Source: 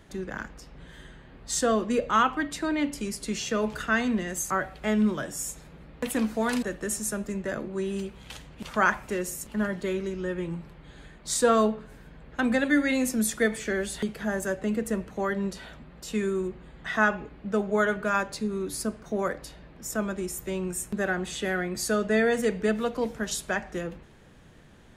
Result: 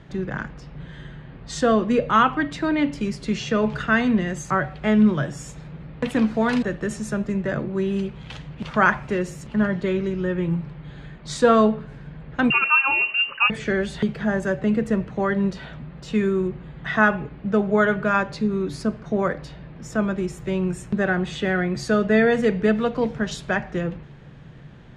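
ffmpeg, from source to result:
-filter_complex "[0:a]asettb=1/sr,asplit=3[a][b][c];[a]atrim=end=12.504[d];[b]atrim=start=12.5:end=13.5,asetpts=PTS-STARTPTS,afade=t=in:d=0.004:c=qsin,afade=t=out:st=0.996:d=0.004:c=qsin,lowpass=f=2.6k:t=q:w=0.5098,lowpass=f=2.6k:t=q:w=0.6013,lowpass=f=2.6k:t=q:w=0.9,lowpass=f=2.6k:t=q:w=2.563,afreqshift=-3000[e];[c]atrim=start=13.496[f];[d][e]acrossfade=d=0.004:c1=hsin:c2=qsin[g];[g][f]acrossfade=d=0.004:c1=qsin:c2=hsin,lowpass=3.9k,equalizer=f=140:t=o:w=0.54:g=12.5,volume=5dB"

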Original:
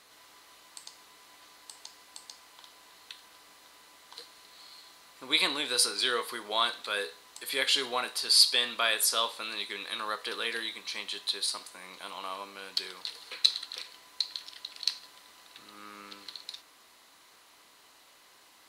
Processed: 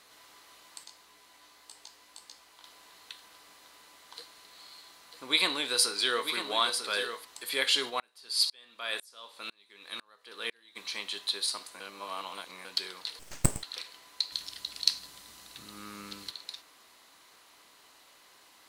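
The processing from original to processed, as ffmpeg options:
-filter_complex "[0:a]asplit=3[a][b][c];[a]afade=t=out:st=0.83:d=0.02[d];[b]flanger=delay=16.5:depth=3.5:speed=1.7,afade=t=in:st=0.83:d=0.02,afade=t=out:st=2.63:d=0.02[e];[c]afade=t=in:st=2.63:d=0.02[f];[d][e][f]amix=inputs=3:normalize=0,asettb=1/sr,asplit=3[g][h][i];[g]atrim=end=4.174[j];[h]atrim=start=4.17:end=7.25,asetpts=PTS-STARTPTS,afade=t=in:d=0.004:c=qsin,afade=t=out:st=3.076:d=0.004:c=qsin,aecho=1:1:946:0.398,atrim=end_sample=135828[k];[i]atrim=start=7.246[l];[j][k]acrossfade=d=0.004:c1=hsin:c2=qsin[m];[m][l]acrossfade=d=0.004:c1=qsin:c2=hsin,asplit=3[n][o][p];[n]afade=t=out:st=7.89:d=0.02[q];[o]aeval=exprs='val(0)*pow(10,-34*if(lt(mod(-2*n/s,1),2*abs(-2)/1000),1-mod(-2*n/s,1)/(2*abs(-2)/1000),(mod(-2*n/s,1)-2*abs(-2)/1000)/(1-2*abs(-2)/1000))/20)':c=same,afade=t=in:st=7.89:d=0.02,afade=t=out:st=10.75:d=0.02[r];[p]afade=t=in:st=10.75:d=0.02[s];[q][r][s]amix=inputs=3:normalize=0,asettb=1/sr,asplit=3[t][u][v];[t]atrim=end=13.194[w];[u]atrim=start=13.19:end=13.63,asetpts=PTS-STARTPTS,afade=t=in:d=0.004:c=qsin,afade=t=out:st=0.436:d=0.004:c=qsin,aeval=exprs='abs(val(0))':c=same[x];[v]atrim=start=13.626[y];[w][x]acrossfade=d=0.004:c1=hsin:c2=qsin[z];[z][y]acrossfade=d=0.004:c1=qsin:c2=hsin,asettb=1/sr,asplit=3[aa][ab][ac];[aa]atrim=end=14.324[ad];[ab]atrim=start=14.32:end=16.31,asetpts=PTS-STARTPTS,afade=t=in:d=0.004:c=qsin,afade=t=out:st=1.986:d=0.004:c=qsin,bass=f=250:g=14,treble=f=4k:g=7[ae];[ac]atrim=start=16.306[af];[ad][ae]acrossfade=d=0.004:c1=hsin:c2=qsin[ag];[ag][af]acrossfade=d=0.004:c1=qsin:c2=hsin,asplit=3[ah][ai][aj];[ah]atrim=end=11.802[ak];[ai]atrim=start=11.798:end=12.652,asetpts=PTS-STARTPTS,areverse[al];[aj]atrim=start=12.648[am];[ak][al]acrossfade=d=0.004:c1=hsin:c2=hsin[an];[an][am]acrossfade=d=0.004:c1=hsin:c2=hsin"

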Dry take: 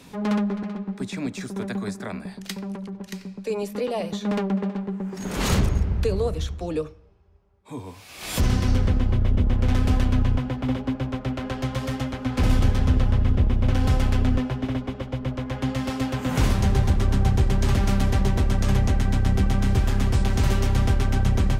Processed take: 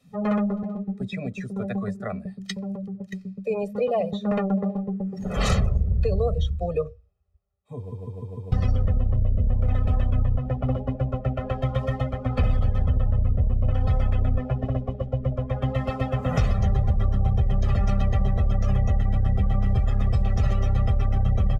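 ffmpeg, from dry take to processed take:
-filter_complex "[0:a]asplit=6[a][b][c][d][e][f];[a]atrim=end=7.922[g];[b]atrim=start=7.768:end=7.922[h];[c]atrim=start=7.768:end=7.922[i];[d]atrim=start=7.768:end=7.922[j];[e]atrim=start=7.768:end=7.922[k];[f]atrim=start=8.518[l];[g][h]acrossfade=d=0.004:c1=hsin:c2=hsin[m];[m][i]acrossfade=d=0.004:c1=hsin:c2=hsin[n];[n][j]acrossfade=d=0.004:c1=hsin:c2=hsin[o];[o][k]acrossfade=d=0.004:c1=hsin:c2=hsin[p];[p][l]acrossfade=d=0.004:c1=hsin:c2=hsin,afftdn=nr=21:nf=-34,aecho=1:1:1.6:0.98,acompressor=threshold=-17dB:ratio=6"

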